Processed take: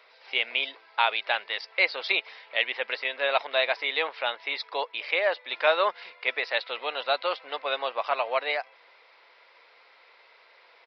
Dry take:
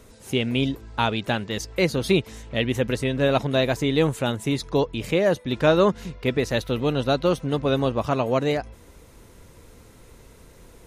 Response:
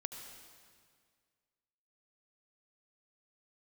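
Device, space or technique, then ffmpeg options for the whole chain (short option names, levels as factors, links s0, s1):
musical greeting card: -af "aresample=11025,aresample=44100,highpass=f=650:w=0.5412,highpass=f=650:w=1.3066,equalizer=f=2200:t=o:w=0.42:g=7"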